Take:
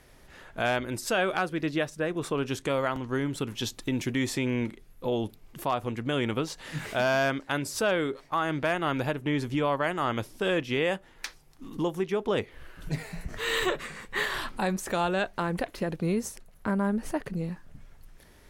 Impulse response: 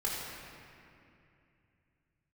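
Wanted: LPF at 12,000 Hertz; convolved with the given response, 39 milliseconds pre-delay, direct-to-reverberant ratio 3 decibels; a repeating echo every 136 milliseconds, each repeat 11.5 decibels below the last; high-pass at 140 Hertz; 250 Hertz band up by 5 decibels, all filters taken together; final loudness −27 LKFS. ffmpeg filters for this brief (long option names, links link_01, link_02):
-filter_complex "[0:a]highpass=140,lowpass=12000,equalizer=frequency=250:width_type=o:gain=7,aecho=1:1:136|272|408:0.266|0.0718|0.0194,asplit=2[link_01][link_02];[1:a]atrim=start_sample=2205,adelay=39[link_03];[link_02][link_03]afir=irnorm=-1:irlink=0,volume=-9dB[link_04];[link_01][link_04]amix=inputs=2:normalize=0,volume=-1.5dB"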